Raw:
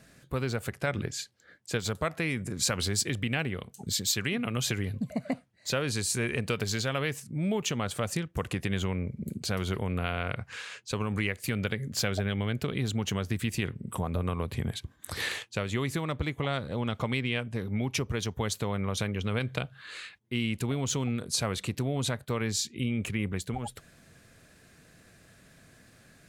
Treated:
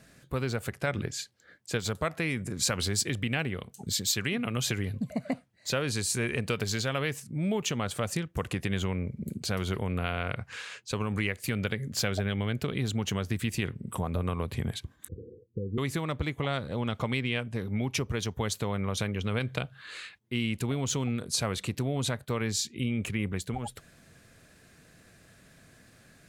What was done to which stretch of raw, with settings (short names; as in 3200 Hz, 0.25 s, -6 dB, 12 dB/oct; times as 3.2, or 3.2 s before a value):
15.08–15.78 Chebyshev low-pass 510 Hz, order 10